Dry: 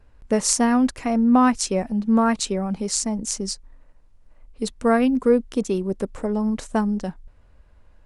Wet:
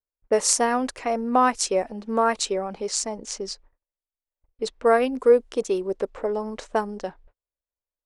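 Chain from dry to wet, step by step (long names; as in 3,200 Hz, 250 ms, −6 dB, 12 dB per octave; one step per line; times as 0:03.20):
noise gate −41 dBFS, range −38 dB
low-pass that shuts in the quiet parts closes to 1,700 Hz, open at −17 dBFS
low shelf with overshoot 300 Hz −10.5 dB, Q 1.5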